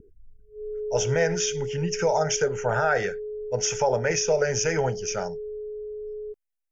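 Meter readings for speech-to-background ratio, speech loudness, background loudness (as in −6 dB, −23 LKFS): 8.5 dB, −25.5 LKFS, −34.0 LKFS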